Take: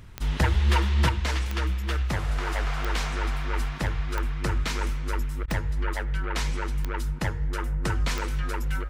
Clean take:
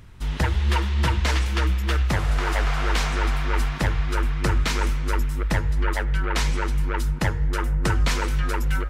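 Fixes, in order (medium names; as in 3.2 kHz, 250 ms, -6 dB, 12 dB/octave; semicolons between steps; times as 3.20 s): clip repair -13 dBFS; de-click; interpolate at 5.46 s, 18 ms; gain correction +5 dB, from 1.09 s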